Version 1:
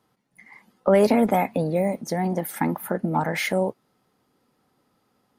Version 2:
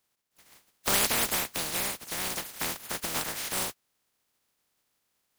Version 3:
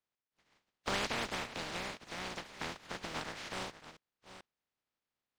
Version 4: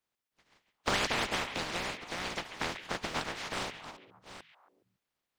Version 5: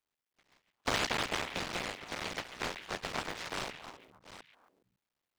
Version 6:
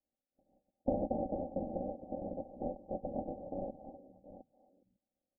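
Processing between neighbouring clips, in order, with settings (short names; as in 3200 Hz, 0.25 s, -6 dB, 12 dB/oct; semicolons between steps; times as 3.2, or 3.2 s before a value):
spectral contrast lowered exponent 0.13; gain -8 dB
reverse delay 0.441 s, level -13 dB; gate -49 dBFS, range -6 dB; air absorption 140 m; gain -5 dB
harmonic-percussive split harmonic -9 dB; on a send: delay with a stepping band-pass 0.138 s, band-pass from 2500 Hz, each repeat -1.4 oct, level -7.5 dB; on the sum: gain +7.5 dB
cycle switcher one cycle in 3, muted
rippled Chebyshev low-pass 790 Hz, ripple 6 dB; comb 3.6 ms, depth 59%; gain +5 dB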